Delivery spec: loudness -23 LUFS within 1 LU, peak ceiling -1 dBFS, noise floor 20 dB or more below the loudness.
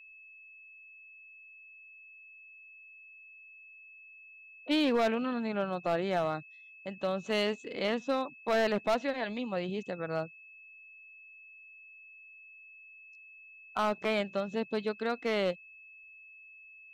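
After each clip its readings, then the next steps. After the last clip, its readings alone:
clipped samples 0.7%; clipping level -22.5 dBFS; steady tone 2.6 kHz; tone level -51 dBFS; loudness -32.0 LUFS; peak level -22.5 dBFS; loudness target -23.0 LUFS
-> clip repair -22.5 dBFS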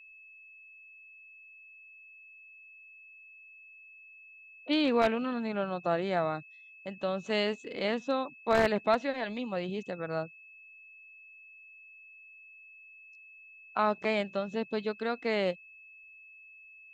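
clipped samples 0.0%; steady tone 2.6 kHz; tone level -51 dBFS
-> band-stop 2.6 kHz, Q 30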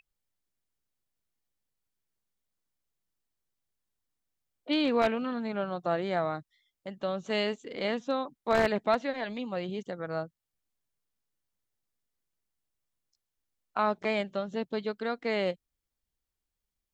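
steady tone not found; loudness -31.0 LUFS; peak level -13.5 dBFS; loudness target -23.0 LUFS
-> trim +8 dB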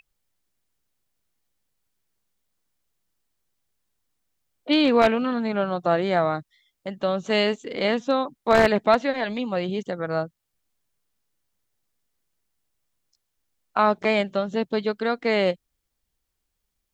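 loudness -23.0 LUFS; peak level -5.5 dBFS; noise floor -79 dBFS

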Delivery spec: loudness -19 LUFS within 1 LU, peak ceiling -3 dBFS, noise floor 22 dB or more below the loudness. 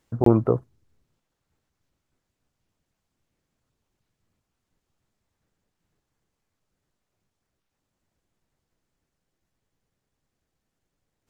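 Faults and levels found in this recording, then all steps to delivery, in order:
dropouts 1; longest dropout 23 ms; loudness -22.0 LUFS; peak level -3.5 dBFS; loudness target -19.0 LUFS
-> interpolate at 0.24 s, 23 ms; trim +3 dB; peak limiter -3 dBFS

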